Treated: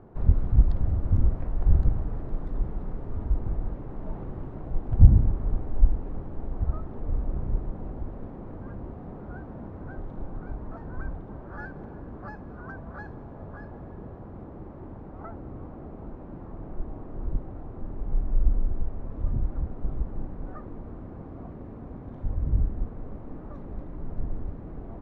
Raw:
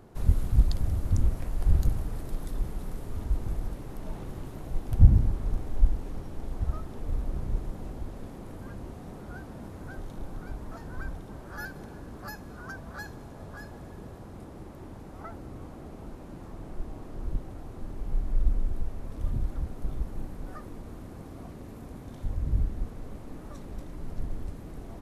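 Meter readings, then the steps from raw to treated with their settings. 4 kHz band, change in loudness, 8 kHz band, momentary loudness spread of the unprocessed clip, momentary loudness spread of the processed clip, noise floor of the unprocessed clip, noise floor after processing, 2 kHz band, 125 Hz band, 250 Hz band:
below −15 dB, +2.5 dB, can't be measured, 16 LU, 16 LU, −44 dBFS, −42 dBFS, −3.0 dB, +2.5 dB, +2.5 dB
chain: low-pass filter 1,300 Hz 12 dB per octave
level +2.5 dB

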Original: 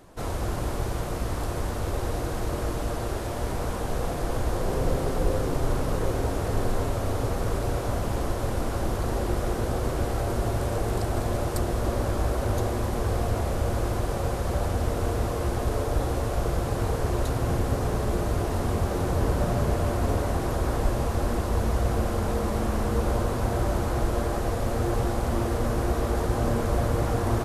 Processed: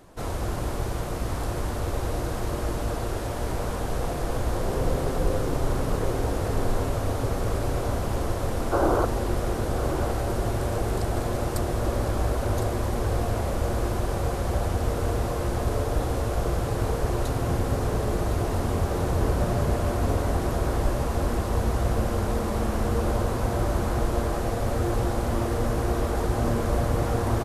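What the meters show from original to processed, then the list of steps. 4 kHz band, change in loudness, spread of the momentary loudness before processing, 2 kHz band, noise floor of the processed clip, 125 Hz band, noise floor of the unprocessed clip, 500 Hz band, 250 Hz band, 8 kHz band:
+0.5 dB, +0.5 dB, 4 LU, +0.5 dB, −29 dBFS, +0.5 dB, −30 dBFS, +0.5 dB, +0.5 dB, +0.5 dB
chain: gain on a spectral selection 0:08.72–0:09.05, 260–1,600 Hz +10 dB
single-tap delay 1,059 ms −10 dB

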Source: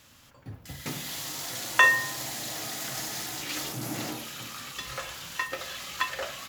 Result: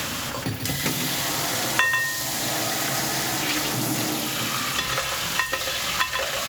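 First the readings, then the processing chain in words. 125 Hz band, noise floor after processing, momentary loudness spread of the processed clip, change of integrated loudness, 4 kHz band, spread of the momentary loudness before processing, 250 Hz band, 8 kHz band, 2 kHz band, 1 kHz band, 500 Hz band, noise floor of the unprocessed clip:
+10.5 dB, −30 dBFS, 4 LU, +6.0 dB, +10.0 dB, 17 LU, +11.0 dB, +9.5 dB, +3.0 dB, +5.5 dB, +9.0 dB, −56 dBFS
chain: single-tap delay 141 ms −6.5 dB
multiband upward and downward compressor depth 100%
level +7.5 dB

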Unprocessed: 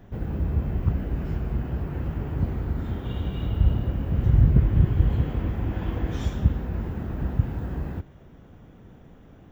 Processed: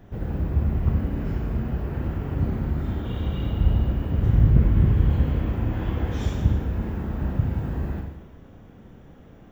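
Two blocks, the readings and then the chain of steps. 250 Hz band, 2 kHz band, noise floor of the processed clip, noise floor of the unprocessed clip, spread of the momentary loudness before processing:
+2.0 dB, +2.0 dB, −47 dBFS, −50 dBFS, 11 LU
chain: four-comb reverb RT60 1 s, combs from 28 ms, DRR 2 dB

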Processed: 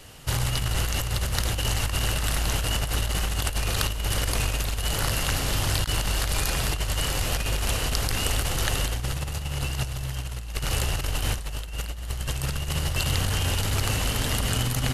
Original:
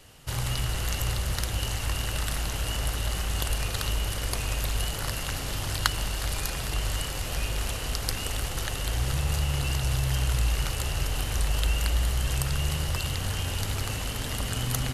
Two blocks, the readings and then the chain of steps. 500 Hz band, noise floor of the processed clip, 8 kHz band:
+3.5 dB, −33 dBFS, +3.5 dB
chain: compressor whose output falls as the input rises −29 dBFS, ratio −0.5
level +4 dB

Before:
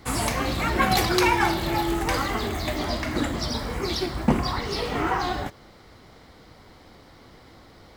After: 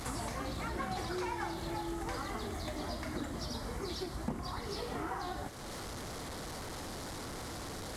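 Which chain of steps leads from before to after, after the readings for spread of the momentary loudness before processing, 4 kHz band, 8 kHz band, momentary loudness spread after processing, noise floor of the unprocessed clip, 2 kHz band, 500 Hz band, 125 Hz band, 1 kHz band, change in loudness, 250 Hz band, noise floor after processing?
8 LU, −14.0 dB, −10.5 dB, 5 LU, −51 dBFS, −16.0 dB, −12.5 dB, −12.0 dB, −14.0 dB, −15.0 dB, −13.0 dB, −43 dBFS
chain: linear delta modulator 64 kbit/s, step −34 dBFS
parametric band 2,600 Hz −6.5 dB 0.75 octaves
downward compressor 3 to 1, threshold −38 dBFS, peak gain reduction 17 dB
level −1.5 dB

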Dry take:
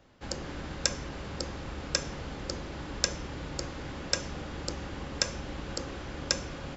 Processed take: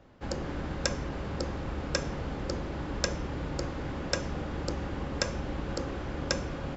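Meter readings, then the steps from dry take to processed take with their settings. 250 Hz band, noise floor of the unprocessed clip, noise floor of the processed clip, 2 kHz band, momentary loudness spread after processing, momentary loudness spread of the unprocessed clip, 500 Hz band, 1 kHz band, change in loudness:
+4.5 dB, −41 dBFS, −38 dBFS, +0.5 dB, 4 LU, 8 LU, +4.0 dB, +3.0 dB, +0.5 dB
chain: high-shelf EQ 2,300 Hz −10.5 dB
level +4.5 dB

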